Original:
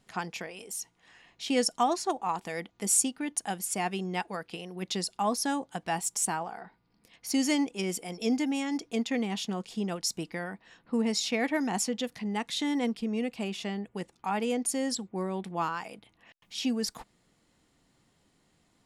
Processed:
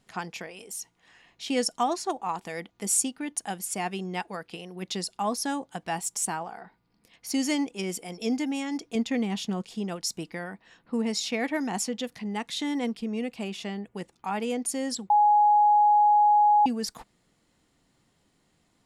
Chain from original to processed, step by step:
0:08.95–0:09.62: low-shelf EQ 190 Hz +8 dB
0:15.10–0:16.66: beep over 834 Hz −16 dBFS

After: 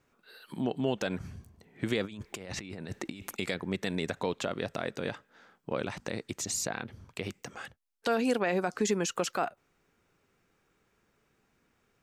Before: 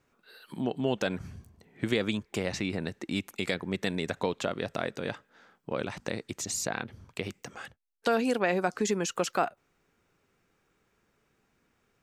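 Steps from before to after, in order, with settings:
0:02.04–0:03.36: compressor whose output falls as the input rises −41 dBFS, ratio −1
brickwall limiter −17.5 dBFS, peak gain reduction 4.5 dB

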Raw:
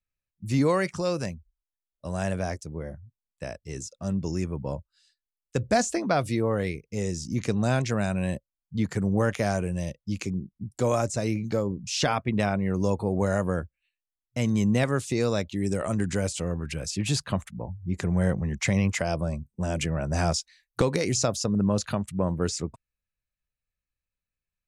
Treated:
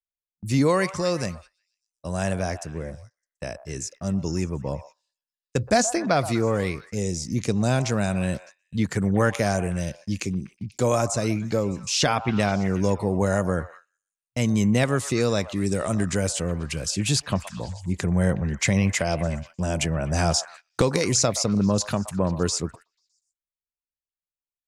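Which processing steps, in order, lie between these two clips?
high-shelf EQ 3,700 Hz +4.5 dB
echo through a band-pass that steps 122 ms, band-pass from 870 Hz, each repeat 0.7 octaves, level −10.5 dB
noise gate −46 dBFS, range −21 dB
0:06.94–0:09.27: parametric band 1,600 Hz −7 dB → +4.5 dB 1.5 octaves
level +2.5 dB

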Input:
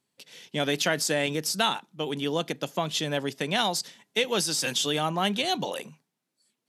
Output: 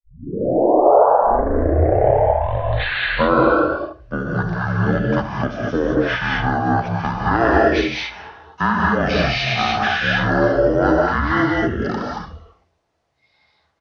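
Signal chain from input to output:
turntable start at the beginning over 2.00 s
parametric band 1,400 Hz +11.5 dB 1.7 octaves
mains-hum notches 60/120/180/240 Hz
in parallel at −0.5 dB: downward compressor, threshold −30 dBFS, peak gain reduction 16 dB
on the sum: high-shelf EQ 8,300 Hz −4.5 dB
frequency shifter −62 Hz
change of speed 0.484×
single-tap delay 75 ms −14.5 dB
reverb whose tail is shaped and stops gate 250 ms rising, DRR −2 dB
level −1 dB

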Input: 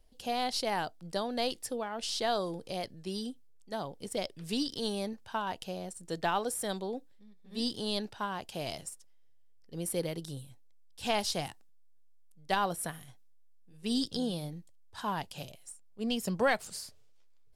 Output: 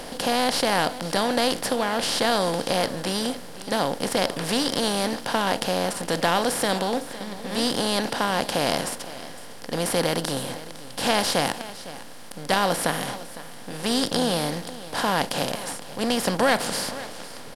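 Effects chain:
compressor on every frequency bin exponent 0.4
single-tap delay 507 ms −16 dB
level +3.5 dB

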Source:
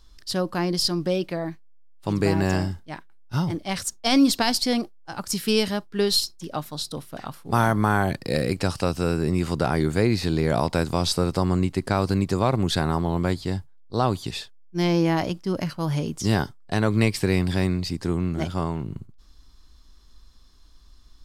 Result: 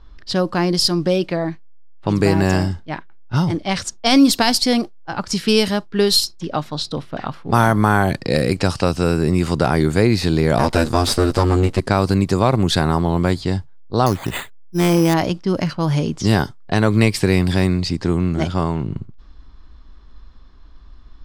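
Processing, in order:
0:10.58–0:11.80: lower of the sound and its delayed copy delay 8.6 ms
in parallel at −2 dB: downward compressor, threshold −31 dBFS, peak gain reduction 16 dB
on the sum: low-pass that shuts in the quiet parts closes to 1,900 Hz, open at −16.5 dBFS
0:14.06–0:15.14: bad sample-rate conversion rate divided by 8×, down none, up hold
level +4.5 dB

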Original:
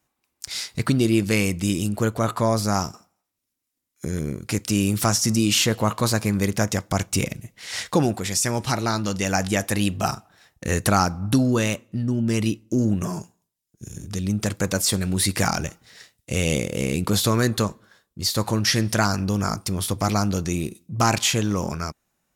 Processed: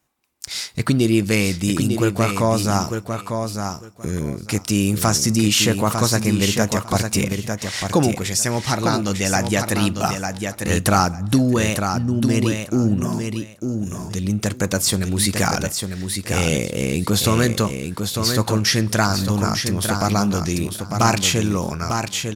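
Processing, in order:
repeating echo 900 ms, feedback 17%, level −6 dB
level +2.5 dB

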